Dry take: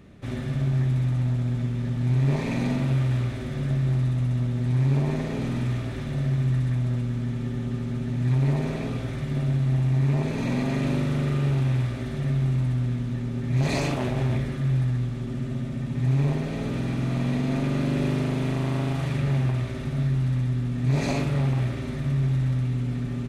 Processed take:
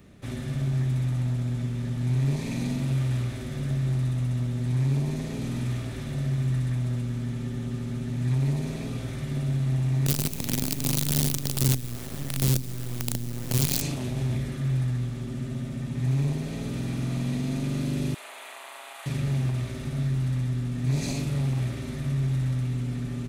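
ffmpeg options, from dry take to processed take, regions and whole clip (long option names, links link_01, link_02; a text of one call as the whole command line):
ffmpeg -i in.wav -filter_complex "[0:a]asettb=1/sr,asplit=3[link_01][link_02][link_03];[link_01]atrim=end=10.064[link_04];[link_02]atrim=start=10.06:end=13.82,asetpts=PTS-STARTPTS,afade=type=in:duration=0.004:curve=qsin,afade=type=out:start_time=3.756:duration=0.004:curve=qsin,asplit=2[link_05][link_06];[link_06]adelay=75,lowpass=frequency=2900:poles=1,volume=-7dB,asplit=2[link_07][link_08];[link_08]adelay=75,lowpass=frequency=2900:poles=1,volume=0.38,asplit=2[link_09][link_10];[link_10]adelay=75,lowpass=frequency=2900:poles=1,volume=0.38,asplit=2[link_11][link_12];[link_12]adelay=75,lowpass=frequency=2900:poles=1,volume=0.38[link_13];[link_05][link_07][link_09][link_11][link_13]amix=inputs=5:normalize=0,atrim=end_sample=165816,acrusher=bits=4:dc=4:mix=0:aa=0.000001[link_14];[link_03]atrim=start=13.816[link_15];[link_04][link_14]acrossfade=duration=0.004:curve1=hsin:curve2=qsin[link_16];[link_16][link_15]acrossfade=duration=0.004:curve1=qsin:curve2=hsin,asettb=1/sr,asplit=3[link_17][link_18][link_19];[link_17]atrim=end=18.144[link_20];[link_18]atrim=start=18.14:end=19.06,asetpts=PTS-STARTPTS,afade=type=in:duration=0.004:curve=qsin,afade=type=out:start_time=0.916:duration=0.004:curve=qsin,highpass=frequency=730:width=0.5412,highpass=frequency=730:width=1.3066,equalizer=frequency=5400:width_type=o:width=0.61:gain=-11.5[link_21];[link_19]atrim=start=19.056[link_22];[link_20][link_21]acrossfade=duration=0.004:curve1=hsin:curve2=qsin[link_23];[link_23][link_22]acrossfade=duration=0.004:curve1=qsin:curve2=hsin,highshelf=frequency=6000:gain=11.5,acrossover=split=330|3000[link_24][link_25][link_26];[link_25]acompressor=threshold=-38dB:ratio=6[link_27];[link_24][link_27][link_26]amix=inputs=3:normalize=0,volume=-2.5dB" out.wav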